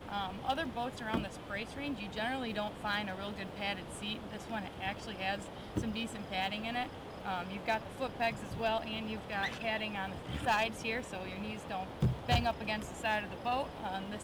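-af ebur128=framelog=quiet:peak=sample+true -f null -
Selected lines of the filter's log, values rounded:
Integrated loudness:
  I:         -36.8 LUFS
  Threshold: -46.8 LUFS
Loudness range:
  LRA:         3.4 LU
  Threshold: -56.9 LUFS
  LRA low:   -38.5 LUFS
  LRA high:  -35.2 LUFS
Sample peak:
  Peak:      -23.2 dBFS
True peak:
  Peak:      -22.9 dBFS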